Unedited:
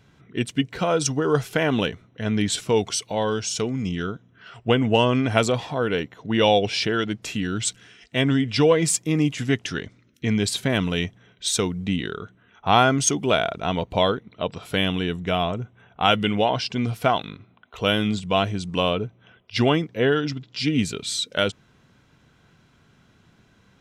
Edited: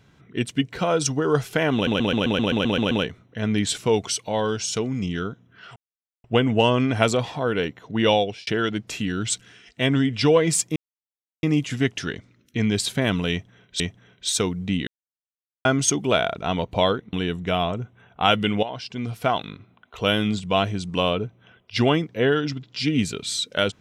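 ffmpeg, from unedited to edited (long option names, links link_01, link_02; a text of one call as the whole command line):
ffmpeg -i in.wav -filter_complex "[0:a]asplit=18[link_01][link_02][link_03][link_04][link_05][link_06][link_07][link_08][link_09][link_10][link_11][link_12][link_13][link_14][link_15][link_16][link_17][link_18];[link_01]atrim=end=1.872[link_19];[link_02]atrim=start=1.738:end=1.872[link_20];[link_03]atrim=start=1.738:end=1.872[link_21];[link_04]atrim=start=1.738:end=1.872[link_22];[link_05]atrim=start=1.738:end=1.872[link_23];[link_06]atrim=start=1.738:end=1.872[link_24];[link_07]atrim=start=1.738:end=1.872[link_25];[link_08]atrim=start=1.738:end=1.872[link_26];[link_09]atrim=start=1.738:end=1.872[link_27];[link_10]atrim=start=1.738:end=4.59,asetpts=PTS-STARTPTS,afade=type=out:start_time=2.848:duration=0.004:curve=hsin,apad=pad_dur=0.48[link_28];[link_11]atrim=start=4.59:end=6.82,asetpts=PTS-STARTPTS,afade=type=in:duration=0.004:curve=hsin,afade=type=out:start_time=1.85:duration=0.38[link_29];[link_12]atrim=start=6.82:end=9.11,asetpts=PTS-STARTPTS,afade=type=in:duration=0.004:curve=hsin,afade=type=out:start_time=2.286:duration=0.004:curve=hsin,apad=pad_dur=0.67[link_30];[link_13]atrim=start=9.11:end=11.482,asetpts=PTS-STARTPTS,afade=type=in:duration=0.004:curve=hsin[link_31];[link_14]atrim=start=10.988:end=12.06,asetpts=PTS-STARTPTS,afade=type=out:start_time=1.068:duration=0.004:curve=hsin[link_32];[link_15]atrim=start=12.06:end=12.84,asetpts=PTS-STARTPTS,volume=0[link_33];[link_16]atrim=start=12.84:end=14.322,asetpts=PTS-STARTPTS,afade=type=in:duration=0.004:curve=hsin[link_34];[link_17]atrim=start=14.928:end=16.43,asetpts=PTS-STARTPTS,afade=type=out:start_time=1.498:duration=0.004:curve=hsin:silence=0.237137[link_35];[link_18]atrim=start=16.43,asetpts=PTS-STARTPTS,afade=type=in:duration=0.88:silence=0.237137[link_36];[link_19][link_20]acrossfade=duration=0.004:curve1=hsin:curve2=hsin[link_37];[link_37][link_21]acrossfade=duration=0.004:curve1=hsin:curve2=hsin[link_38];[link_38][link_22]acrossfade=duration=0.004:curve1=hsin:curve2=hsin[link_39];[link_39][link_23]acrossfade=duration=0.004:curve1=hsin:curve2=hsin[link_40];[link_40][link_24]acrossfade=duration=0.004:curve1=hsin:curve2=hsin[link_41];[link_41][link_25]acrossfade=duration=0.004:curve1=hsin:curve2=hsin[link_42];[link_42][link_26]acrossfade=duration=0.004:curve1=hsin:curve2=hsin[link_43];[link_43][link_27]acrossfade=duration=0.004:curve1=hsin:curve2=hsin[link_44];[link_28][link_29][link_30][link_31]concat=n=4:v=0:a=1[link_45];[link_44][link_45]acrossfade=duration=0.004:curve1=hsin:curve2=hsin[link_46];[link_32][link_33][link_34]concat=n=3:v=0:a=1[link_47];[link_46][link_47]acrossfade=duration=0.004:curve1=hsin:curve2=hsin[link_48];[link_35][link_36]concat=n=2:v=0:a=1[link_49];[link_48][link_49]acrossfade=duration=0.004:curve1=hsin:curve2=hsin" out.wav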